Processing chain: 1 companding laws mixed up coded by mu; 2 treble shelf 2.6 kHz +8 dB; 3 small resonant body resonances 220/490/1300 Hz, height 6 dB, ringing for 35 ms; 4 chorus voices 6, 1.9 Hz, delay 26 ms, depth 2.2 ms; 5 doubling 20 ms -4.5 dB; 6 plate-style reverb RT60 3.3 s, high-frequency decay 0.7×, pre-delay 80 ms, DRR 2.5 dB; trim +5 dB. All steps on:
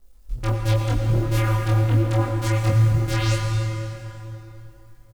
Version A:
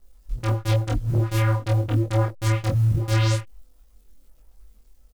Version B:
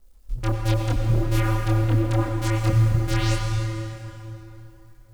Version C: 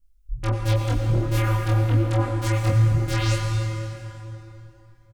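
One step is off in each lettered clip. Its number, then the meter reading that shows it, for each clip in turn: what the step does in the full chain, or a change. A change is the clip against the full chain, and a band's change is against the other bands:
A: 6, momentary loudness spread change -12 LU; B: 5, 250 Hz band +2.5 dB; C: 1, distortion -25 dB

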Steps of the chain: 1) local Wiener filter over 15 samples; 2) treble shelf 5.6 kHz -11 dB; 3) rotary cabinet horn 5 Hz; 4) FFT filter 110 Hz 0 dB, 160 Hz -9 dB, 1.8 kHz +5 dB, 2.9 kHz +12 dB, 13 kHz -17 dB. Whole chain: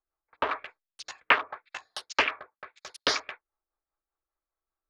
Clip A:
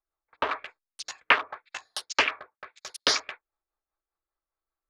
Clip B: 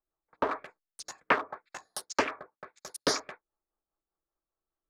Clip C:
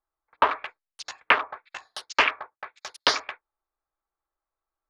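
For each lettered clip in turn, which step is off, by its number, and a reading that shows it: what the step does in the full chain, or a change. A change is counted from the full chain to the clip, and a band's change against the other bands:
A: 2, 8 kHz band +6.0 dB; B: 4, momentary loudness spread change -2 LU; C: 3, 1 kHz band +2.5 dB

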